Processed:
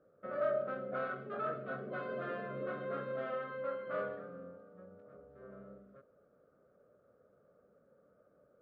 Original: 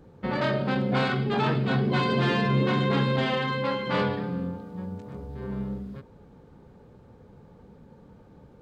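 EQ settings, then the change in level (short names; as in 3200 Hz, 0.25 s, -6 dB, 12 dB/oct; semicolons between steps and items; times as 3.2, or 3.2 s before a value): double band-pass 890 Hz, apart 1.1 oct; air absorption 94 m; tilt -1.5 dB/oct; -3.0 dB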